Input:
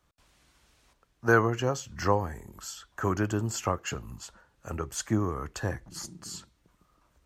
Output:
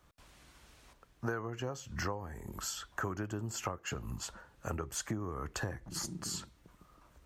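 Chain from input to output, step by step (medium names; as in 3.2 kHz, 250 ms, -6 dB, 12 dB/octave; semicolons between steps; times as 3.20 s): peaking EQ 5.7 kHz -2.5 dB 2.1 oct; compression 10:1, threshold -39 dBFS, peak gain reduction 22.5 dB; trim +5 dB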